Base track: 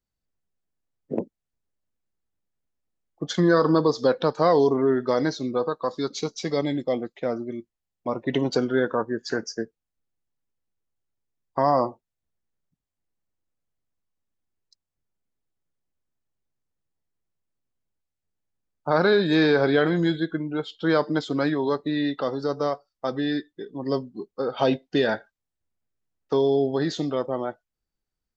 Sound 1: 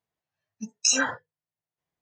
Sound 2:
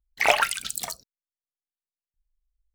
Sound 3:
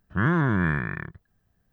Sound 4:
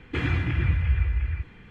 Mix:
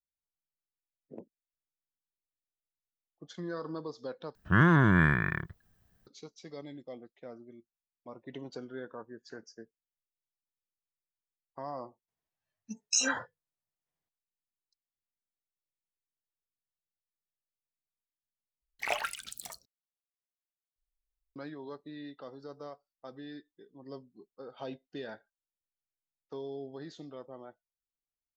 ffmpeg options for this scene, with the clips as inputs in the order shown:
-filter_complex "[0:a]volume=0.106[s0];[3:a]highshelf=f=2500:g=6[s1];[s0]asplit=3[s2][s3][s4];[s2]atrim=end=4.354[s5];[s1]atrim=end=1.72,asetpts=PTS-STARTPTS,volume=0.944[s6];[s3]atrim=start=6.066:end=18.624[s7];[2:a]atrim=end=2.74,asetpts=PTS-STARTPTS,volume=0.237[s8];[s4]atrim=start=21.356[s9];[1:a]atrim=end=2.01,asetpts=PTS-STARTPTS,volume=0.501,afade=t=in:d=0.004:c=hsin,afade=t=out:st=2.006:d=0.004:c=hsin,adelay=12080[s10];[s5][s6]acrossfade=d=0.004:c1=hsin:c2=hsin[s11];[s11][s7]acrossfade=d=0.004:c1=hsin:c2=hsin[s12];[s12][s8]acrossfade=d=0.004:c1=hsin:c2=hsin[s13];[s13][s9]acrossfade=d=0.004:c1=hsin:c2=hsin[s14];[s14][s10]amix=inputs=2:normalize=0"

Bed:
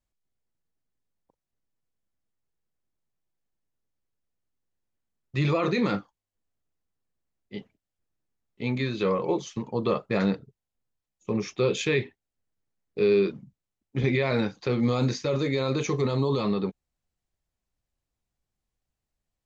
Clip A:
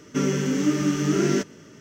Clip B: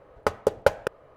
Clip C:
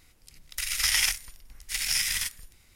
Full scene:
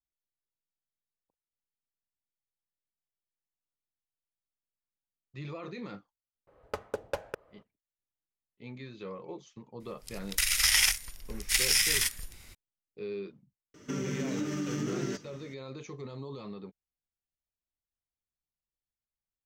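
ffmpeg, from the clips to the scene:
-filter_complex "[0:a]volume=0.15[s0];[2:a]asoftclip=type=hard:threshold=0.2[s1];[3:a]dynaudnorm=f=170:g=3:m=5.96[s2];[1:a]acompressor=threshold=0.0708:ratio=6:attack=3.2:release=140:knee=1:detection=peak[s3];[s1]atrim=end=1.16,asetpts=PTS-STARTPTS,volume=0.335,afade=t=in:d=0.004:c=hsin,afade=t=out:st=1.156:d=0.004:c=hsin,adelay=6470[s4];[s2]atrim=end=2.75,asetpts=PTS-STARTPTS,volume=0.447,afade=t=in:d=0.004:c=hsin,afade=t=out:st=2.746:d=0.004:c=hsin,adelay=9800[s5];[s3]atrim=end=1.8,asetpts=PTS-STARTPTS,volume=0.473,afade=t=in:d=0.004:c=hsin,afade=t=out:st=1.796:d=0.004:c=hsin,adelay=13740[s6];[s0][s4][s5][s6]amix=inputs=4:normalize=0"

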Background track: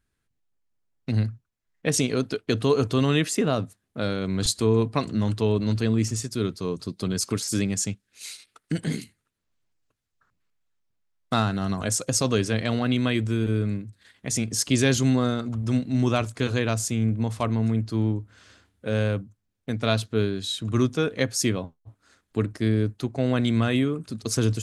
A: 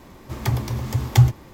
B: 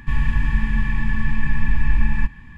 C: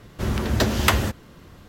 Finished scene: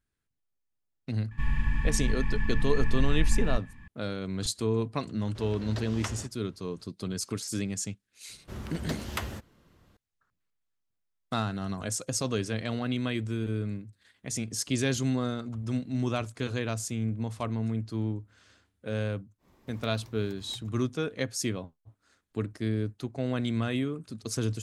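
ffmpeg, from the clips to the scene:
-filter_complex "[3:a]asplit=2[s0][s1];[0:a]volume=0.447[s2];[s0]lowpass=7100[s3];[s1]aresample=32000,aresample=44100[s4];[1:a]acompressor=threshold=0.0316:ratio=6:attack=3.2:release=140:knee=1:detection=peak[s5];[2:a]atrim=end=2.57,asetpts=PTS-STARTPTS,volume=0.398,afade=t=in:d=0.004:c=hsin,afade=t=out:st=2.566:d=0.004:c=hsin,adelay=1310[s6];[s3]atrim=end=1.68,asetpts=PTS-STARTPTS,volume=0.126,afade=t=in:d=0.004:c=hsin,afade=t=out:st=1.676:d=0.004:c=hsin,adelay=5160[s7];[s4]atrim=end=1.68,asetpts=PTS-STARTPTS,volume=0.178,afade=t=in:d=0.004:c=hsin,afade=t=out:st=1.676:d=0.004:c=hsin,adelay=8290[s8];[s5]atrim=end=1.53,asetpts=PTS-STARTPTS,volume=0.133,afade=t=in:d=0.1,afade=t=out:st=1.43:d=0.1,adelay=19380[s9];[s2][s6][s7][s8][s9]amix=inputs=5:normalize=0"

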